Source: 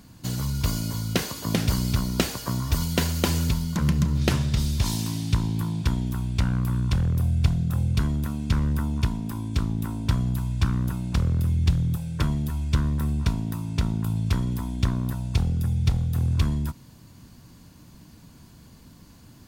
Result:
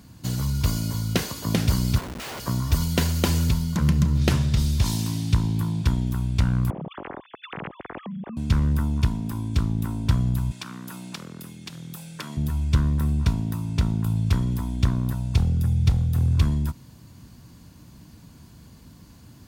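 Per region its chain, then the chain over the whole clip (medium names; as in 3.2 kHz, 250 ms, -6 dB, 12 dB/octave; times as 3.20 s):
1.98–2.40 s: high-pass 740 Hz + treble shelf 4.8 kHz -5.5 dB + Schmitt trigger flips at -36.5 dBFS
6.70–8.37 s: formants replaced by sine waves + compression 4:1, threshold -36 dBFS
10.51–12.37 s: tilt shelf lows -5 dB, about 910 Hz + compression 4:1, threshold -28 dBFS + high-pass 180 Hz 24 dB/octave
whole clip: high-pass 49 Hz; bass shelf 110 Hz +5.5 dB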